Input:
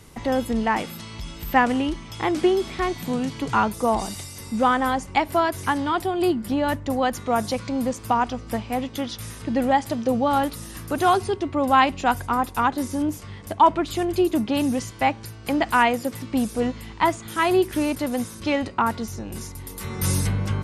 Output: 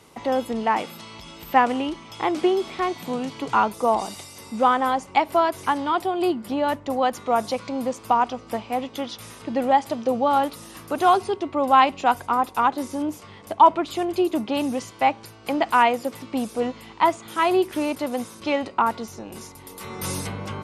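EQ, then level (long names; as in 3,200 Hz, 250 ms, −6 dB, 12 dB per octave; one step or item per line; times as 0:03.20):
high-pass filter 670 Hz 6 dB per octave
parametric band 1,700 Hz −6.5 dB 0.62 octaves
high-shelf EQ 3,300 Hz −11 dB
+5.5 dB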